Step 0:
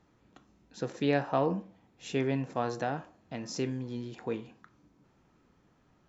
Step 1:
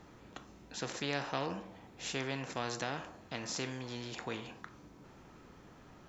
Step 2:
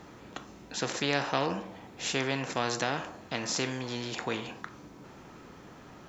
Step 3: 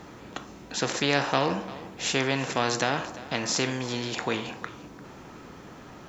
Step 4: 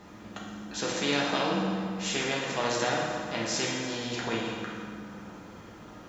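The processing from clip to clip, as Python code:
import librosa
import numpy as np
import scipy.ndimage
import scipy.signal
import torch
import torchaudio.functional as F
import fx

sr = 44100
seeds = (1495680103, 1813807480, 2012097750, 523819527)

y1 = fx.spectral_comp(x, sr, ratio=2.0)
y1 = y1 * 10.0 ** (-7.0 / 20.0)
y2 = fx.low_shelf(y1, sr, hz=70.0, db=-9.5)
y2 = y2 * 10.0 ** (7.5 / 20.0)
y3 = y2 + 10.0 ** (-17.5 / 20.0) * np.pad(y2, (int(346 * sr / 1000.0), 0))[:len(y2)]
y3 = y3 * 10.0 ** (4.5 / 20.0)
y4 = fx.rev_fdn(y3, sr, rt60_s=2.1, lf_ratio=0.85, hf_ratio=0.7, size_ms=29.0, drr_db=-3.5)
y4 = y4 * 10.0 ** (-7.0 / 20.0)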